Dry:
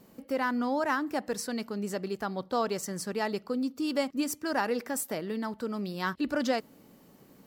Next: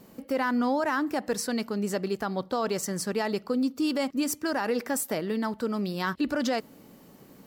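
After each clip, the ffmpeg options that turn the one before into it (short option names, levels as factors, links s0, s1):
-af "alimiter=limit=0.0708:level=0:latency=1:release=55,volume=1.68"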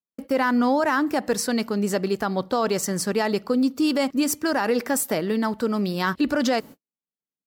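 -af "agate=range=0.00126:threshold=0.00708:ratio=16:detection=peak,volume=1.88"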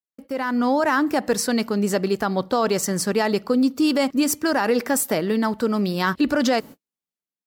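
-af "dynaudnorm=f=230:g=5:m=3.16,volume=0.447"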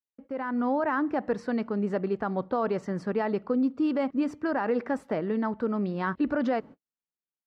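-af "lowpass=1700,volume=0.473"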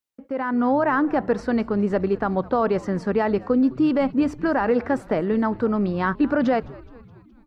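-filter_complex "[0:a]asplit=6[s0][s1][s2][s3][s4][s5];[s1]adelay=210,afreqshift=-120,volume=0.0891[s6];[s2]adelay=420,afreqshift=-240,volume=0.0562[s7];[s3]adelay=630,afreqshift=-360,volume=0.0355[s8];[s4]adelay=840,afreqshift=-480,volume=0.0224[s9];[s5]adelay=1050,afreqshift=-600,volume=0.014[s10];[s0][s6][s7][s8][s9][s10]amix=inputs=6:normalize=0,volume=2.11"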